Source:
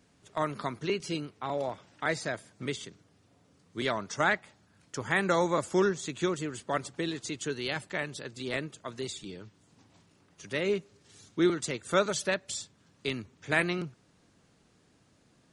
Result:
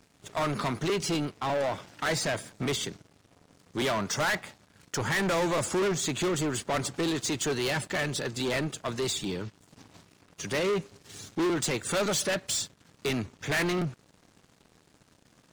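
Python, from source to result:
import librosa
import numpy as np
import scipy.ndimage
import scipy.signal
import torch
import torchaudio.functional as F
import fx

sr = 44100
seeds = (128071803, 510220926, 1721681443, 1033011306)

y = 10.0 ** (-23.5 / 20.0) * np.tanh(x / 10.0 ** (-23.5 / 20.0))
y = fx.leveller(y, sr, passes=3)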